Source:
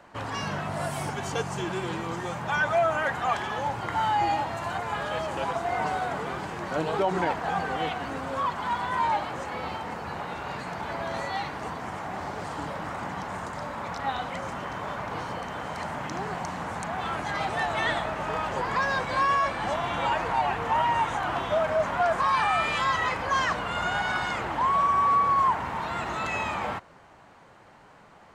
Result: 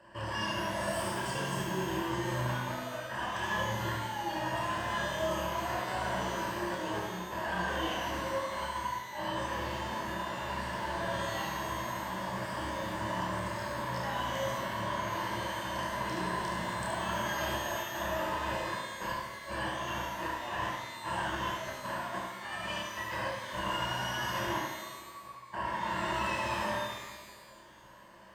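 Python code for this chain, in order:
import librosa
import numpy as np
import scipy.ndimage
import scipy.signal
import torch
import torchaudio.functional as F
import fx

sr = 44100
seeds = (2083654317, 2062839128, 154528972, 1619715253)

y = fx.ripple_eq(x, sr, per_octave=1.3, db=14)
y = fx.over_compress(y, sr, threshold_db=-28.0, ratio=-0.5)
y = fx.chorus_voices(y, sr, voices=2, hz=0.57, base_ms=30, depth_ms=1.8, mix_pct=40)
y = y + 10.0 ** (-5.5 / 20.0) * np.pad(y, (int(72 * sr / 1000.0), 0))[:len(y)]
y = fx.rev_shimmer(y, sr, seeds[0], rt60_s=1.3, semitones=12, shimmer_db=-8, drr_db=1.5)
y = y * 10.0 ** (-7.5 / 20.0)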